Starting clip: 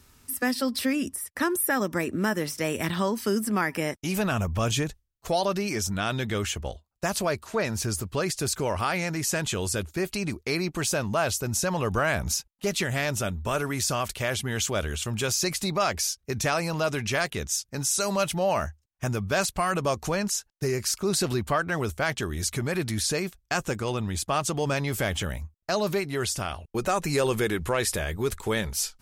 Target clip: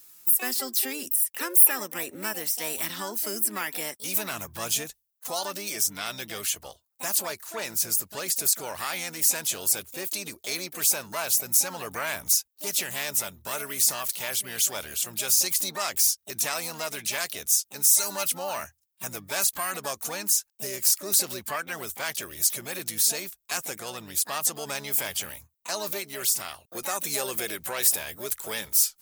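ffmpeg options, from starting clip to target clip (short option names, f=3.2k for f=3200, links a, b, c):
-filter_complex "[0:a]asplit=2[a][b];[b]asetrate=66075,aresample=44100,atempo=0.66742,volume=-8dB[c];[a][c]amix=inputs=2:normalize=0,aemphasis=mode=production:type=riaa,volume=-7dB"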